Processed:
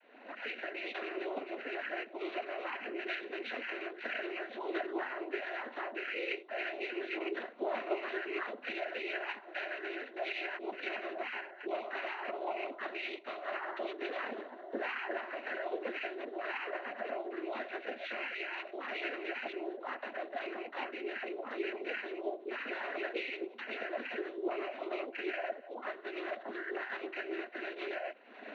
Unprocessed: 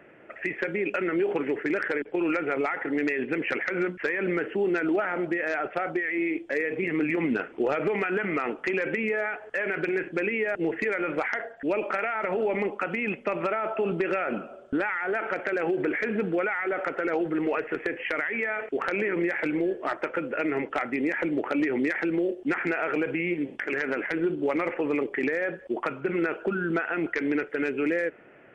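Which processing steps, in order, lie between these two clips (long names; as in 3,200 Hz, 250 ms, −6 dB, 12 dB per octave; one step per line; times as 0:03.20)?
camcorder AGC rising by 49 dB per second
multi-voice chorus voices 6, 0.28 Hz, delay 23 ms, depth 4.6 ms
one-pitch LPC vocoder at 8 kHz 260 Hz
cochlear-implant simulation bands 12
frequency shifter +120 Hz
level −7 dB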